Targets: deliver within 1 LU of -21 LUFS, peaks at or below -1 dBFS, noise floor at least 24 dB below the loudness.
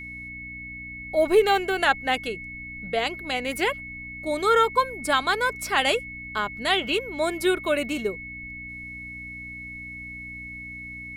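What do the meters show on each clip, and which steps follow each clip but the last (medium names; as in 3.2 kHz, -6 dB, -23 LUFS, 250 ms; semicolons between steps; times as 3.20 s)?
hum 60 Hz; highest harmonic 300 Hz; hum level -43 dBFS; steady tone 2.2 kHz; tone level -36 dBFS; loudness -24.5 LUFS; peak level -6.5 dBFS; loudness target -21.0 LUFS
-> de-hum 60 Hz, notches 5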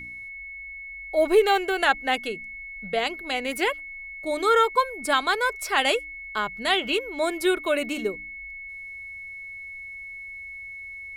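hum not found; steady tone 2.2 kHz; tone level -36 dBFS
-> band-stop 2.2 kHz, Q 30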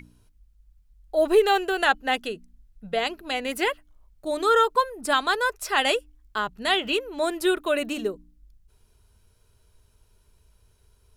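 steady tone not found; loudness -24.5 LUFS; peak level -7.0 dBFS; loudness target -21.0 LUFS
-> trim +3.5 dB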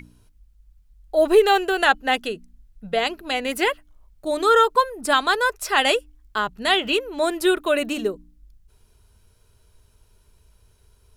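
loudness -21.0 LUFS; peak level -3.5 dBFS; noise floor -59 dBFS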